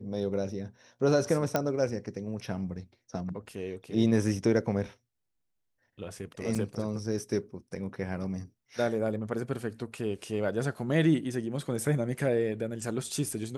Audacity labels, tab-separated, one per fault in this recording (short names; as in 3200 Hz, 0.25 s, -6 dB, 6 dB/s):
1.560000	1.560000	pop -12 dBFS
6.550000	6.550000	gap 4.7 ms